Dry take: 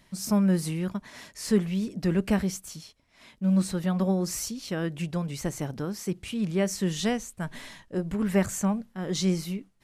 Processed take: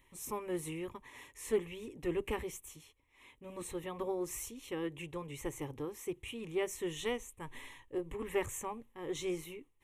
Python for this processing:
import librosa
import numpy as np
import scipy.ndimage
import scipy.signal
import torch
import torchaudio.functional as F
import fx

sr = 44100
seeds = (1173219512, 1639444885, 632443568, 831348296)

y = fx.fixed_phaser(x, sr, hz=980.0, stages=8)
y = fx.doppler_dist(y, sr, depth_ms=0.1)
y = y * librosa.db_to_amplitude(-4.0)